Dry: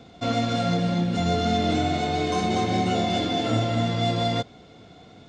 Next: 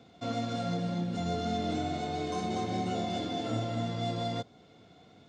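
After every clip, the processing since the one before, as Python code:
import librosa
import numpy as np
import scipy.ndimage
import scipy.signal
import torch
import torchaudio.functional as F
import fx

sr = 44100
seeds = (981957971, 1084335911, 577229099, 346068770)

y = scipy.signal.sosfilt(scipy.signal.butter(2, 79.0, 'highpass', fs=sr, output='sos'), x)
y = fx.dynamic_eq(y, sr, hz=2400.0, q=0.94, threshold_db=-44.0, ratio=4.0, max_db=-4)
y = y * librosa.db_to_amplitude(-8.5)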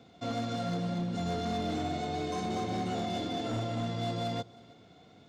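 y = np.clip(x, -10.0 ** (-28.0 / 20.0), 10.0 ** (-28.0 / 20.0))
y = y + 10.0 ** (-22.5 / 20.0) * np.pad(y, (int(317 * sr / 1000.0), 0))[:len(y)]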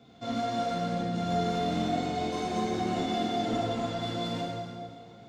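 y = fx.rev_plate(x, sr, seeds[0], rt60_s=2.1, hf_ratio=0.75, predelay_ms=0, drr_db=-5.0)
y = y * librosa.db_to_amplitude(-3.0)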